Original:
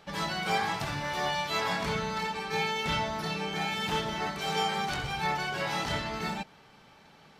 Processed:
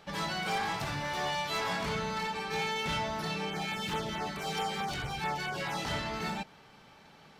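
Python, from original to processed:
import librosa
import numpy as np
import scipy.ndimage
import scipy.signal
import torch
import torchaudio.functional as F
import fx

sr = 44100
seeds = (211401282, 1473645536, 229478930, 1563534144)

y = 10.0 ** (-27.0 / 20.0) * np.tanh(x / 10.0 ** (-27.0 / 20.0))
y = fx.filter_lfo_notch(y, sr, shape='saw_down', hz=4.6, low_hz=460.0, high_hz=6900.0, q=1.2, at=(3.5, 5.85))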